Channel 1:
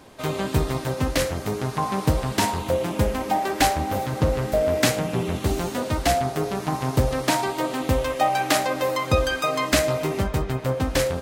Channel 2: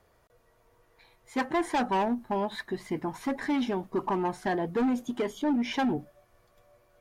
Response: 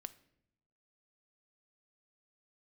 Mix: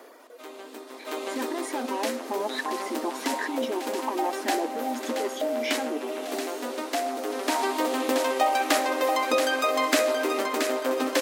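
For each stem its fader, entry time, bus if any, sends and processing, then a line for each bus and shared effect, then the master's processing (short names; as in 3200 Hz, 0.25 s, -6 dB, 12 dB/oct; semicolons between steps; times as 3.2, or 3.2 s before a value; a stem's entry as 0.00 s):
-0.5 dB, 0.20 s, no send, echo send -7.5 dB, auto duck -22 dB, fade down 0.25 s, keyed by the second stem
-1.0 dB, 0.00 s, no send, no echo send, reverb removal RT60 1.5 s; low shelf 450 Hz +7 dB; negative-ratio compressor -30 dBFS, ratio -1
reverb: off
echo: feedback echo 0.677 s, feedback 33%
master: brick-wall FIR high-pass 230 Hz; three-band squash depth 40%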